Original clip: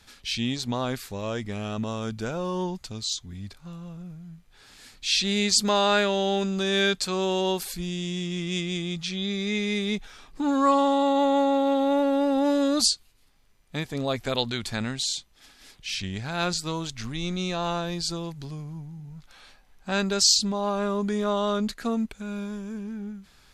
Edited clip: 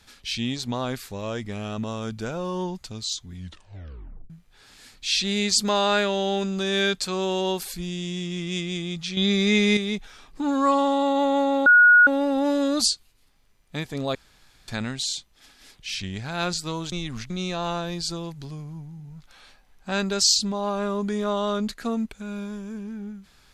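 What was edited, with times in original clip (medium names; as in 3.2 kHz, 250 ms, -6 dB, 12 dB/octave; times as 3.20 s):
3.35 s: tape stop 0.95 s
9.17–9.77 s: gain +7.5 dB
11.66–12.07 s: bleep 1.45 kHz -10 dBFS
14.15–14.68 s: room tone
16.92–17.30 s: reverse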